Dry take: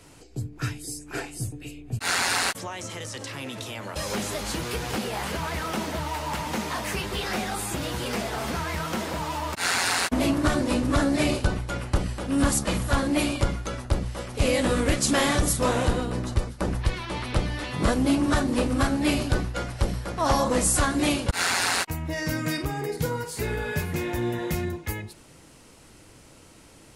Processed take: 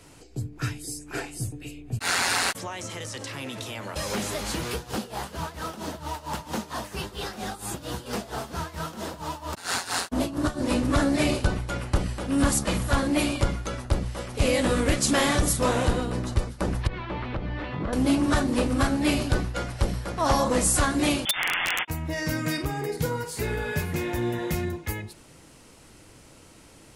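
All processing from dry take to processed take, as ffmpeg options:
ffmpeg -i in.wav -filter_complex "[0:a]asettb=1/sr,asplit=3[link_01][link_02][link_03];[link_01]atrim=end=4.744[link_04];[link_02]atrim=start=4.74:end=10.64,asetpts=PTS-STARTPTS,afade=type=in:duration=0.004:curve=qsin,afade=type=out:start_time=5.896:duration=0.004:curve=qsin,equalizer=frequency=2200:width_type=o:width=0.56:gain=-7.5,tremolo=f=4.4:d=0.82[link_05];[link_03]atrim=start=10.636[link_06];[link_04][link_05]acrossfade=duration=0.004:curve1=hsin:curve2=qsin[link_07];[link_07][link_06]acrossfade=duration=0.004:curve1=qsin:curve2=hsin,asettb=1/sr,asplit=3[link_08][link_09][link_10];[link_08]atrim=end=16.874[link_11];[link_09]atrim=start=16.87:end=17.93,asetpts=PTS-STARTPTS,afade=type=in:duration=0.004:curve=qsin,afade=type=out:start_time=1.056:duration=0.004:curve=qsin,lowpass=3500,aemphasis=mode=reproduction:type=75fm,acompressor=threshold=-26dB:ratio=6:attack=3.2:release=140:knee=1:detection=peak[link_12];[link_10]atrim=start=17.926[link_13];[link_11][link_12]acrossfade=duration=0.004:curve1=hsin:curve2=qsin[link_14];[link_14][link_13]acrossfade=duration=0.004:curve1=qsin:curve2=hsin,asettb=1/sr,asplit=3[link_15][link_16][link_17];[link_15]atrim=end=21.254[link_18];[link_16]atrim=start=21.25:end=21.88,asetpts=PTS-STARTPTS,afade=type=in:duration=0.004:curve=qsin,afade=type=out:start_time=0.626:duration=0.004:curve=qsin,lowpass=frequency=3100:width_type=q:width=0.5098,lowpass=frequency=3100:width_type=q:width=0.6013,lowpass=frequency=3100:width_type=q:width=0.9,lowpass=frequency=3100:width_type=q:width=2.563,afreqshift=-3600,aeval=exprs='(mod(6.31*val(0)+1,2)-1)/6.31':channel_layout=same[link_19];[link_17]atrim=start=21.876[link_20];[link_18][link_19]acrossfade=duration=0.004:curve1=hsin:curve2=qsin[link_21];[link_21][link_20]acrossfade=duration=0.004:curve1=qsin:curve2=hsin" out.wav

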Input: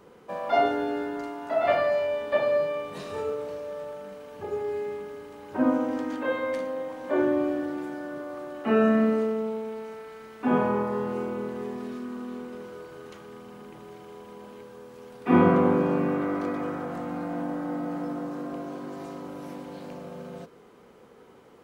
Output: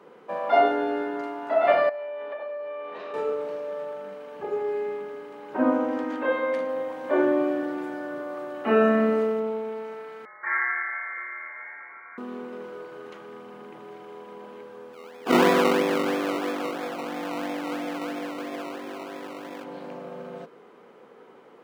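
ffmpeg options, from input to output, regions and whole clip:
ffmpeg -i in.wav -filter_complex "[0:a]asettb=1/sr,asplit=3[link_01][link_02][link_03];[link_01]atrim=end=1.894[link_04];[link_02]atrim=start=1.89:end=3.14,asetpts=PTS-STARTPTS,afade=type=in:duration=0.004:curve=qsin,afade=type=out:start_time=1.246:duration=0.004:curve=qsin,acompressor=threshold=-33dB:ratio=16:attack=3.2:release=140:knee=1:detection=peak,highpass=380,lowpass=3000[link_05];[link_03]atrim=start=3.136[link_06];[link_04][link_05]acrossfade=duration=0.004:curve1=hsin:curve2=qsin[link_07];[link_07][link_06]acrossfade=duration=0.004:curve1=qsin:curve2=hsin,asettb=1/sr,asplit=3[link_08][link_09][link_10];[link_08]atrim=end=6.694[link_11];[link_09]atrim=start=6.69:end=9.4,asetpts=PTS-STARTPTS,afade=type=in:duration=0.004:curve=qsin,afade=type=out:start_time=2.706:duration=0.004:curve=qsin,highshelf=frequency=5100:gain=6,aeval=exprs='val(0)+0.00282*(sin(2*PI*60*n/s)+sin(2*PI*2*60*n/s)/2+sin(2*PI*3*60*n/s)/3+sin(2*PI*4*60*n/s)/4+sin(2*PI*5*60*n/s)/5)':channel_layout=same[link_12];[link_10]atrim=start=9.396[link_13];[link_11][link_12]acrossfade=duration=0.004:curve1=hsin:curve2=qsin[link_14];[link_14][link_13]acrossfade=duration=0.004:curve1=qsin:curve2=hsin,asettb=1/sr,asplit=3[link_15][link_16][link_17];[link_15]atrim=end=10.254[link_18];[link_16]atrim=start=10.25:end=12.18,asetpts=PTS-STARTPTS,afade=type=in:duration=0.004:curve=qsin,afade=type=out:start_time=1.926:duration=0.004:curve=qsin,highpass=frequency=580:width=0.5412,highpass=frequency=580:width=1.3066,lowpass=frequency=2200:width_type=q:width=0.5098,lowpass=frequency=2200:width_type=q:width=0.6013,lowpass=frequency=2200:width_type=q:width=0.9,lowpass=frequency=2200:width_type=q:width=2.563,afreqshift=-2600[link_19];[link_17]atrim=start=12.176[link_20];[link_18][link_19]acrossfade=duration=0.004:curve1=hsin:curve2=qsin[link_21];[link_21][link_20]acrossfade=duration=0.004:curve1=qsin:curve2=hsin,asettb=1/sr,asplit=3[link_22][link_23][link_24];[link_22]atrim=end=14.934[link_25];[link_23]atrim=start=14.93:end=19.64,asetpts=PTS-STARTPTS,afade=type=in:duration=0.004:curve=qsin,afade=type=out:start_time=4.706:duration=0.004:curve=qsin,highpass=230,acrusher=samples=21:mix=1:aa=0.000001:lfo=1:lforange=12.6:lforate=3[link_26];[link_24]atrim=start=19.636[link_27];[link_25][link_26]acrossfade=duration=0.004:curve1=hsin:curve2=qsin[link_28];[link_28][link_27]acrossfade=duration=0.004:curve1=qsin:curve2=hsin,highpass=frequency=130:width=0.5412,highpass=frequency=130:width=1.3066,bass=frequency=250:gain=-8,treble=frequency=4000:gain=-11,volume=3.5dB" out.wav

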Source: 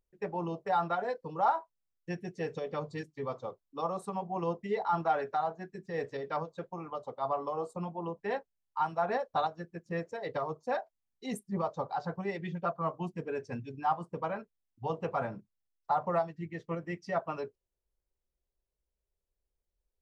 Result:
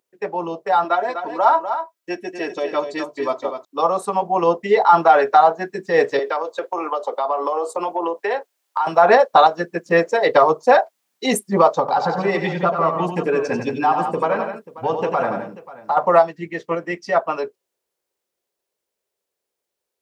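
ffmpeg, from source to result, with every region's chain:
ffmpeg -i in.wav -filter_complex "[0:a]asettb=1/sr,asplit=3[link_01][link_02][link_03];[link_01]atrim=end=0.844[link_04];[link_02]atrim=start=0.84:end=3.65,asetpts=PTS-STARTPTS,afade=type=in:duration=0.004:curve=qsin,afade=type=out:start_time=2.806:duration=0.004:curve=qsin,aecho=1:1:3.1:0.69,atrim=end_sample=123921,aecho=1:1:248:0.355,atrim=end_sample=123921[link_05];[link_03]atrim=start=3.646[link_06];[link_04][link_05]acrossfade=duration=0.004:curve1=hsin:curve2=qsin[link_07];[link_07][link_06]acrossfade=duration=0.004:curve1=qsin:curve2=hsin,asettb=1/sr,asplit=3[link_08][link_09][link_10];[link_08]atrim=end=6.194[link_11];[link_09]atrim=start=6.19:end=8.87,asetpts=PTS-STARTPTS,afade=type=in:duration=0.004:curve=qsin,afade=type=out:start_time=2.676:duration=0.004:curve=qsin,highpass=frequency=300:width=0.5412,highpass=frequency=300:width=1.3066,acompressor=threshold=-39dB:ratio=6:attack=3.2:release=140:knee=1:detection=peak[link_12];[link_10]atrim=start=8.866[link_13];[link_11][link_12]acrossfade=duration=0.004:curve1=hsin:curve2=qsin[link_14];[link_14][link_13]acrossfade=duration=0.004:curve1=qsin:curve2=hsin,asettb=1/sr,asplit=3[link_15][link_16][link_17];[link_15]atrim=end=11.794[link_18];[link_16]atrim=start=11.79:end=15.97,asetpts=PTS-STARTPTS,afade=type=in:duration=0.004:curve=qsin,afade=type=out:start_time=4.176:duration=0.004:curve=qsin,acompressor=threshold=-39dB:ratio=2.5:attack=3.2:release=140:knee=1:detection=peak,lowshelf=frequency=230:gain=6.5,aecho=1:1:92|171|537:0.422|0.376|0.141,atrim=end_sample=184338[link_19];[link_17]atrim=start=15.966[link_20];[link_18][link_19]acrossfade=duration=0.004:curve1=hsin:curve2=qsin[link_21];[link_21][link_20]acrossfade=duration=0.004:curve1=qsin:curve2=hsin,dynaudnorm=framelen=300:gausssize=31:maxgain=10dB,highpass=330,alimiter=level_in=13dB:limit=-1dB:release=50:level=0:latency=1,volume=-1dB" out.wav

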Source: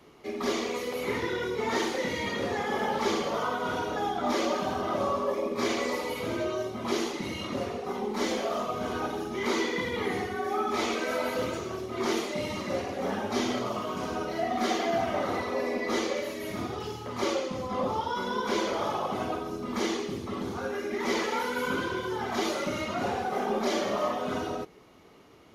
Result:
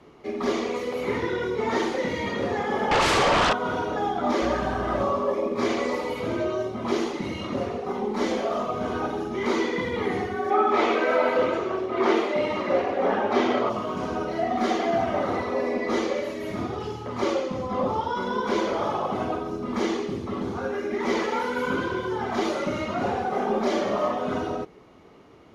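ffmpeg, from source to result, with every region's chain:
ffmpeg -i in.wav -filter_complex "[0:a]asettb=1/sr,asplit=3[link_01][link_02][link_03];[link_01]atrim=end=2.914[link_04];[link_02]atrim=start=2.91:end=3.53,asetpts=PTS-STARTPTS,afade=type=in:duration=0.004:curve=qsin,afade=type=out:start_time=0.616:duration=0.004:curve=qsin,highpass=600,lowpass=5700,aeval=exprs='0.106*sin(PI/2*4.47*val(0)/0.106)':channel_layout=same[link_05];[link_03]atrim=start=3.526[link_06];[link_04][link_05]acrossfade=duration=0.004:curve1=hsin:curve2=qsin[link_07];[link_07][link_06]acrossfade=duration=0.004:curve1=qsin:curve2=hsin,asettb=1/sr,asplit=3[link_08][link_09][link_10];[link_08]atrim=end=4.424[link_11];[link_09]atrim=start=4.42:end=5.03,asetpts=PTS-STARTPTS,afade=type=in:duration=0.004:curve=qsin,afade=type=out:start_time=0.606:duration=0.004:curve=qsin,equalizer=frequency=1700:width=4.3:gain=9.5,aeval=exprs='sgn(val(0))*max(abs(val(0))-0.00447,0)':channel_layout=same,aeval=exprs='val(0)+0.0112*(sin(2*PI*60*n/s)+sin(2*PI*2*60*n/s)/2+sin(2*PI*3*60*n/s)/3+sin(2*PI*4*60*n/s)/4+sin(2*PI*5*60*n/s)/5)':channel_layout=same[link_12];[link_10]atrim=start=5.026[link_13];[link_11][link_12]acrossfade=duration=0.004:curve1=hsin:curve2=qsin[link_14];[link_14][link_13]acrossfade=duration=0.004:curve1=qsin:curve2=hsin,asettb=1/sr,asplit=3[link_15][link_16][link_17];[link_15]atrim=end=10.504[link_18];[link_16]atrim=start=10.5:end=13.7,asetpts=PTS-STARTPTS,afade=type=in:duration=0.004:curve=qsin,afade=type=out:start_time=3.196:duration=0.004:curve=qsin,acrossover=split=290 3600:gain=0.224 1 0.224[link_19][link_20][link_21];[link_19][link_20][link_21]amix=inputs=3:normalize=0,acontrast=38[link_22];[link_17]atrim=start=13.696[link_23];[link_18][link_22]acrossfade=duration=0.004:curve1=hsin:curve2=qsin[link_24];[link_24][link_23]acrossfade=duration=0.004:curve1=qsin:curve2=hsin,lowpass=10000,highshelf=frequency=2500:gain=-8.5,volume=4.5dB" out.wav

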